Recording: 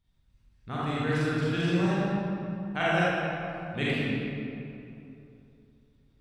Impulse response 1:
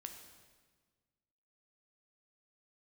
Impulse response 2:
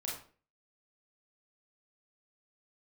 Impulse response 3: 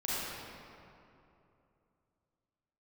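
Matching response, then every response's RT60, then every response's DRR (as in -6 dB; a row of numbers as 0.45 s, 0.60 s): 3; 1.5 s, 0.40 s, 2.8 s; 4.5 dB, -4.5 dB, -9.5 dB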